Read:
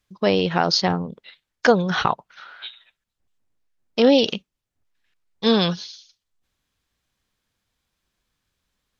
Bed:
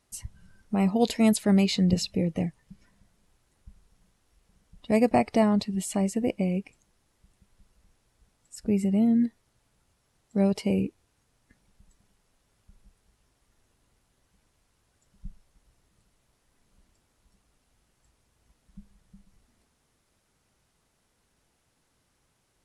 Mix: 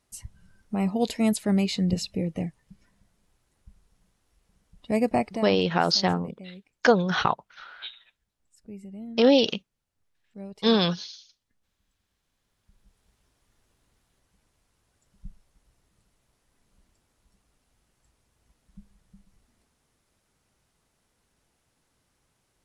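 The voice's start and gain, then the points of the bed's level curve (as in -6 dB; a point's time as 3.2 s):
5.20 s, -3.0 dB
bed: 5.24 s -2 dB
5.56 s -17 dB
11.87 s -17 dB
13.05 s -1 dB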